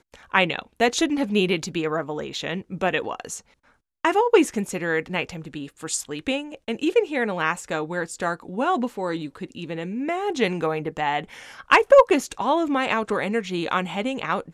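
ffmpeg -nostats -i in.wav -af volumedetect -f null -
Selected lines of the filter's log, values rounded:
mean_volume: -23.9 dB
max_volume: -3.1 dB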